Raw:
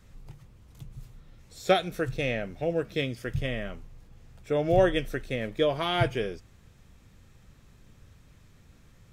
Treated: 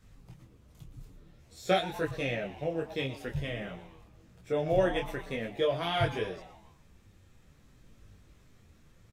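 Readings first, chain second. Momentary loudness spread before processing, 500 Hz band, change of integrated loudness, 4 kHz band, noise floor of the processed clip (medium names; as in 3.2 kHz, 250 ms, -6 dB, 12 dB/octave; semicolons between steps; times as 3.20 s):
17 LU, -3.5 dB, -3.5 dB, -3.0 dB, -60 dBFS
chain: frequency-shifting echo 118 ms, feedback 48%, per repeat +150 Hz, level -15 dB; detune thickener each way 17 cents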